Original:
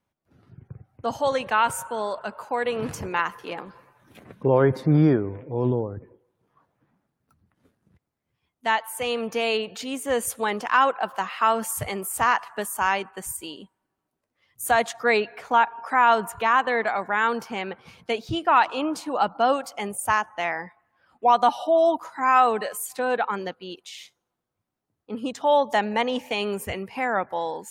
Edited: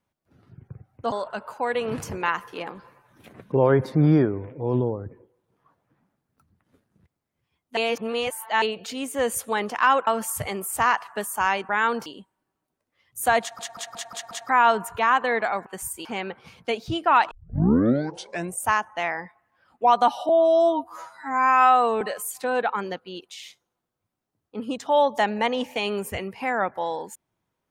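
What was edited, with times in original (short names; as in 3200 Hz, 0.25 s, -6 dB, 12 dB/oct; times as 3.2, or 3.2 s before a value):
1.12–2.03 cut
8.68–9.53 reverse
10.98–11.48 cut
13.1–13.49 swap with 17.09–17.46
14.84 stutter in place 0.18 s, 6 plays
18.72 tape start 1.31 s
21.7–22.56 stretch 2×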